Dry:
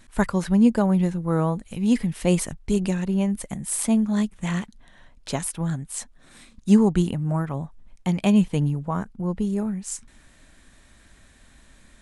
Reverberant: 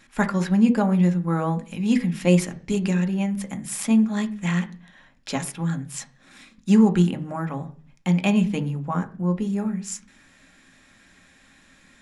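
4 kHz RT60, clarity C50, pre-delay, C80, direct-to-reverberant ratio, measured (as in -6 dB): 0.50 s, 17.0 dB, 3 ms, 21.5 dB, 7.0 dB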